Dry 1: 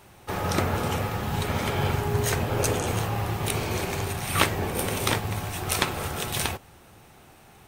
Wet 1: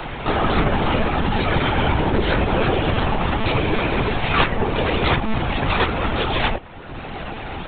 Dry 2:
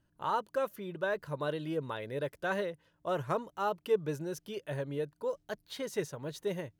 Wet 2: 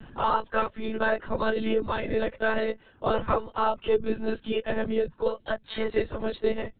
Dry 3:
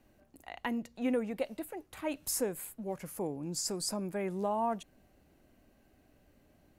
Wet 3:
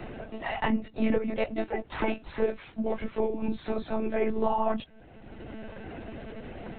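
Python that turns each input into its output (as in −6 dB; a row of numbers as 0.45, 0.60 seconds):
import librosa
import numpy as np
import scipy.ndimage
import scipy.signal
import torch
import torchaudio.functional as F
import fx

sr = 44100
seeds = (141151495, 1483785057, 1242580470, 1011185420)

y = fx.phase_scramble(x, sr, seeds[0], window_ms=50)
y = fx.lpc_monotone(y, sr, seeds[1], pitch_hz=220.0, order=16)
y = fx.band_squash(y, sr, depth_pct=70)
y = y * 10.0 ** (8.0 / 20.0)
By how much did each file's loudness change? +6.5, +7.5, +5.0 LU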